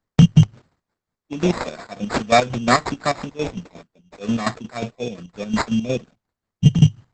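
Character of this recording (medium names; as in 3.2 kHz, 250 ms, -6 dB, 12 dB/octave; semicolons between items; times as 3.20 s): chopped level 5.6 Hz, depth 65%, duty 45%; aliases and images of a low sample rate 3 kHz, jitter 0%; Opus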